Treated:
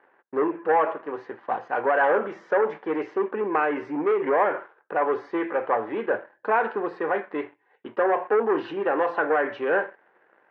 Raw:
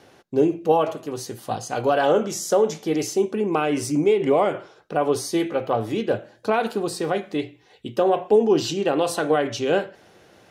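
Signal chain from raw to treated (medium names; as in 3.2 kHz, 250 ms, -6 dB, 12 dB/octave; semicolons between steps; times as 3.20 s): waveshaping leveller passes 2; cabinet simulation 440–2000 Hz, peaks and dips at 670 Hz -4 dB, 960 Hz +6 dB, 1.7 kHz +7 dB; trim -5 dB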